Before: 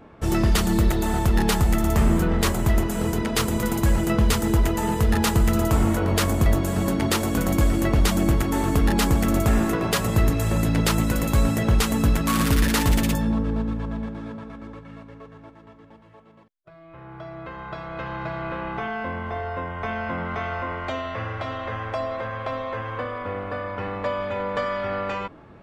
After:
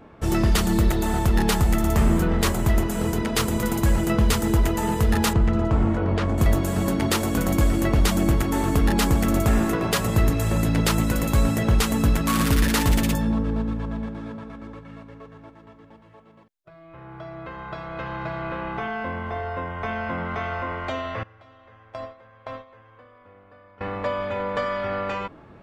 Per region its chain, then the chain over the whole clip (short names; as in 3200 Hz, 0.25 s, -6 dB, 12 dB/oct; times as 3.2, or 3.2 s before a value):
5.33–6.38 tape spacing loss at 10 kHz 28 dB + mismatched tape noise reduction encoder only
21.23–23.81 gate with hold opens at -18 dBFS, closes at -21 dBFS + compressor 3:1, threshold -32 dBFS
whole clip: dry